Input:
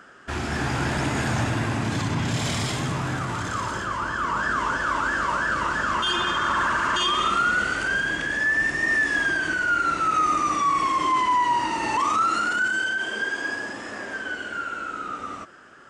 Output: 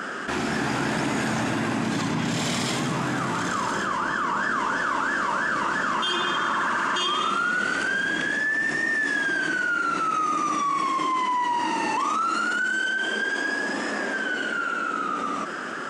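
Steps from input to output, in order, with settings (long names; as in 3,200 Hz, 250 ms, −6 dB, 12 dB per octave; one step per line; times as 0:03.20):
low shelf with overshoot 130 Hz −13 dB, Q 1.5
envelope flattener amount 70%
level −4.5 dB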